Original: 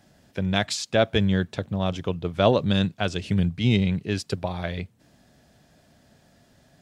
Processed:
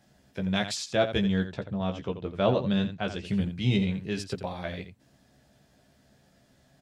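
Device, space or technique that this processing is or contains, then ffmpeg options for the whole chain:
slapback doubling: -filter_complex "[0:a]asettb=1/sr,asplit=3[a][b][c];[a]atrim=end=1.434[d];[b]atrim=start=1.43:end=3.25,asetpts=PTS-STARTPTS,afade=t=in:d=0.004:c=qsin,afade=t=out:st=1.816:d=0.004:c=qsin,aemphasis=mode=reproduction:type=50kf[e];[c]atrim=start=3.246[f];[d][e]acrossfade=d=0.004:c1=hsin:c2=qsin[g];[g][f]acrossfade=d=0.004:c1=qsin:c2=hsin,asplit=3[h][i][j];[i]adelay=15,volume=-4dB[k];[j]adelay=85,volume=-10dB[l];[h][k][l]amix=inputs=3:normalize=0,volume=-6dB"

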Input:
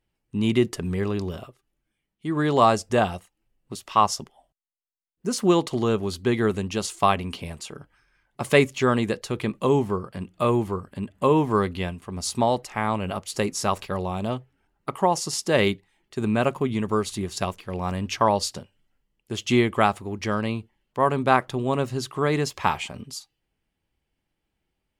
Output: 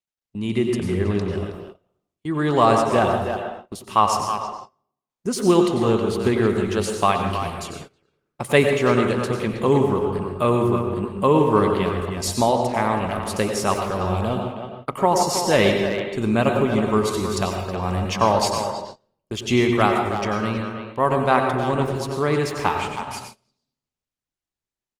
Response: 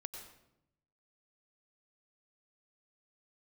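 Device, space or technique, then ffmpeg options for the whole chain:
speakerphone in a meeting room: -filter_complex "[1:a]atrim=start_sample=2205[a];[0:a][a]afir=irnorm=-1:irlink=0,asplit=2[b][c];[c]adelay=320,highpass=300,lowpass=3.4k,asoftclip=type=hard:threshold=-16.5dB,volume=-7dB[d];[b][d]amix=inputs=2:normalize=0,dynaudnorm=f=220:g=7:m=7dB,agate=range=-22dB:threshold=-36dB:ratio=16:detection=peak" -ar 48000 -c:a libopus -b:a 24k

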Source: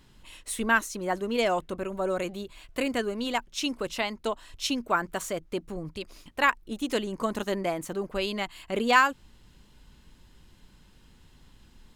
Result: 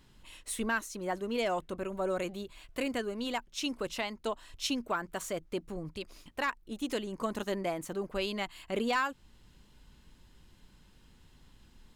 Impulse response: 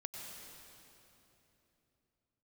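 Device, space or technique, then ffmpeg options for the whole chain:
soft clipper into limiter: -af "asoftclip=type=tanh:threshold=-12.5dB,alimiter=limit=-18.5dB:level=0:latency=1:release=416,volume=-3.5dB"

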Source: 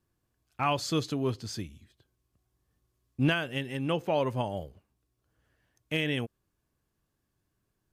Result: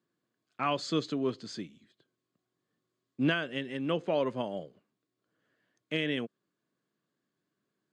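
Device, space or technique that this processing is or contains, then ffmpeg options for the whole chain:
television speaker: -af "highpass=f=170:w=0.5412,highpass=f=170:w=1.3066,equalizer=f=840:t=q:w=4:g=-8,equalizer=f=2.6k:t=q:w=4:g=-4,equalizer=f=5.7k:t=q:w=4:g=-9,lowpass=f=6.8k:w=0.5412,lowpass=f=6.8k:w=1.3066"

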